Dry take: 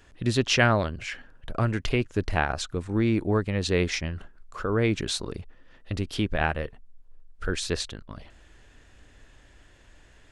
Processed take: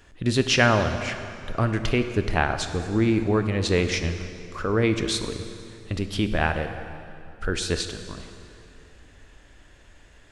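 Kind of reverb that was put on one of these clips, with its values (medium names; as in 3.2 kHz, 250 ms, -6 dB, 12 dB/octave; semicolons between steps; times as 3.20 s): plate-style reverb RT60 2.7 s, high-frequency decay 0.8×, DRR 7.5 dB; trim +2 dB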